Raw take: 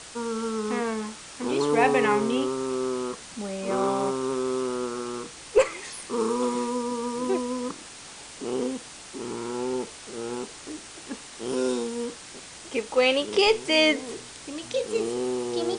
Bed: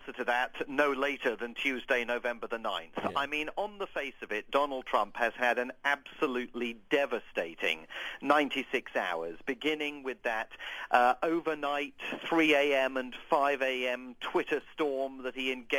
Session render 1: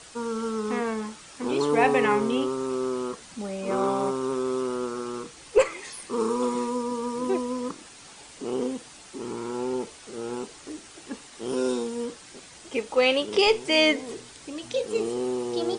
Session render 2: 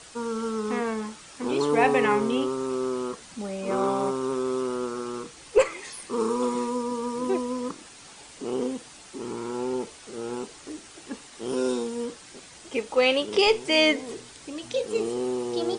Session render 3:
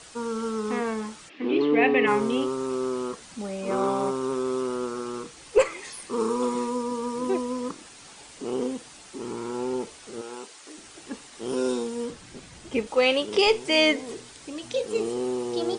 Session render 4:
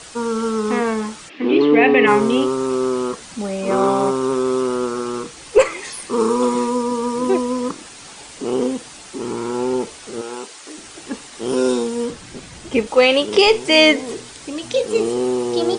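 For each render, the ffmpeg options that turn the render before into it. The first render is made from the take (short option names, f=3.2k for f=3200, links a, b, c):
-af "afftdn=nr=6:nf=-44"
-af anull
-filter_complex "[0:a]asplit=3[a][b][c];[a]afade=t=out:st=1.28:d=0.02[d];[b]highpass=f=170:w=0.5412,highpass=f=170:w=1.3066,equalizer=f=320:t=q:w=4:g=9,equalizer=f=560:t=q:w=4:g=-3,equalizer=f=930:t=q:w=4:g=-10,equalizer=f=1.4k:t=q:w=4:g=-8,equalizer=f=2k:t=q:w=4:g=6,equalizer=f=2.8k:t=q:w=4:g=5,lowpass=f=3.5k:w=0.5412,lowpass=f=3.5k:w=1.3066,afade=t=in:st=1.28:d=0.02,afade=t=out:st=2.06:d=0.02[e];[c]afade=t=in:st=2.06:d=0.02[f];[d][e][f]amix=inputs=3:normalize=0,asettb=1/sr,asplit=3[g][h][i];[g]atrim=end=10.214[j];[h]atrim=start=10.21:end=10.78,asetpts=PTS-STARTPTS,afade=t=in:d=0.004:c=qsin,afade=t=out:st=0.566:d=0.004:c=qsin,highpass=f=760:p=1[k];[i]atrim=start=10.776[l];[j][k]acrossfade=d=0.004:c1=hsin:c2=qsin[m];[m][l]acrossfade=d=0.004:c1=qsin:c2=hsin,asettb=1/sr,asplit=3[n][o][p];[n]atrim=end=12.104[q];[o]atrim=start=12.1:end=12.87,asetpts=PTS-STARTPTS,afade=t=in:d=0.004:c=qsin,afade=t=out:st=0.766:d=0.004:c=qsin,bass=f=250:g=11,treble=f=4k:g=-3[r];[p]atrim=start=12.866[s];[q][r]acrossfade=d=0.004:c1=hsin:c2=qsin[t];[t][s]acrossfade=d=0.004:c1=qsin:c2=hsin"
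-af "volume=8.5dB,alimiter=limit=-2dB:level=0:latency=1"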